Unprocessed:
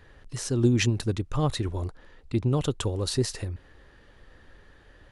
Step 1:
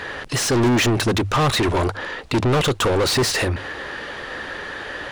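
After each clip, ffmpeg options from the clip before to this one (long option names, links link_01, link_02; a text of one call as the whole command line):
ffmpeg -i in.wav -filter_complex "[0:a]bandreject=frequency=50:width_type=h:width=6,bandreject=frequency=100:width_type=h:width=6,asplit=2[link_01][link_02];[link_02]highpass=frequency=720:poles=1,volume=36dB,asoftclip=type=tanh:threshold=-10.5dB[link_03];[link_01][link_03]amix=inputs=2:normalize=0,lowpass=frequency=3900:poles=1,volume=-6dB" out.wav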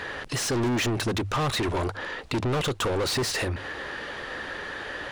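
ffmpeg -i in.wav -af "acompressor=threshold=-28dB:ratio=1.5,volume=-3.5dB" out.wav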